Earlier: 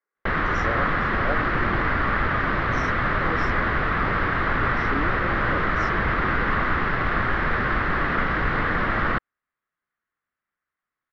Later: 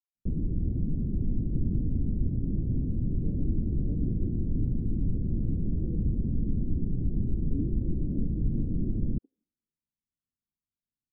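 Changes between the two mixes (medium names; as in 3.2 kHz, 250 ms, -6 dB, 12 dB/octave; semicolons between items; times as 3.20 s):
speech: entry +2.60 s; master: add inverse Chebyshev band-stop 1.3–5.6 kHz, stop band 80 dB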